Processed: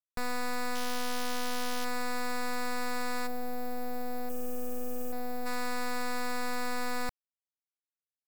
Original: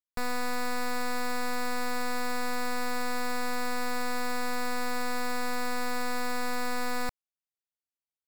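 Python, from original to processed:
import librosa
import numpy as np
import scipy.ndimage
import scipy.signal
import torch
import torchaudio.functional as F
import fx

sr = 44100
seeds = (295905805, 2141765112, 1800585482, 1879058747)

y = fx.sample_sort(x, sr, block=8, at=(0.75, 1.85))
y = fx.spec_box(y, sr, start_s=4.29, length_s=0.83, low_hz=590.0, high_hz=7500.0, gain_db=-30)
y = fx.quant_dither(y, sr, seeds[0], bits=6, dither='none')
y = fx.spec_box(y, sr, start_s=3.27, length_s=2.19, low_hz=850.0, high_hz=11000.0, gain_db=-12)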